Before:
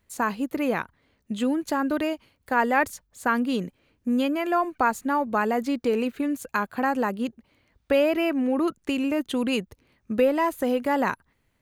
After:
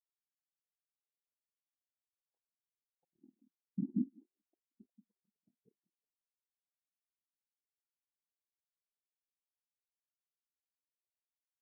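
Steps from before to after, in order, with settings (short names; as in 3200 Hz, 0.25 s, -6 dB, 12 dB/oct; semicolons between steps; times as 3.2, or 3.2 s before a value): Doppler pass-by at 4.04, 24 m/s, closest 2 m; whisperiser; compressor 16:1, threshold -43 dBFS, peak gain reduction 21 dB; treble ducked by the level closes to 390 Hz, closed at -45 dBFS; added harmonics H 7 -14 dB, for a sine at -35 dBFS; delay with a stepping band-pass 0.179 s, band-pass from 220 Hz, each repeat 1.4 oct, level -1 dB; spectral expander 4:1; gain +10 dB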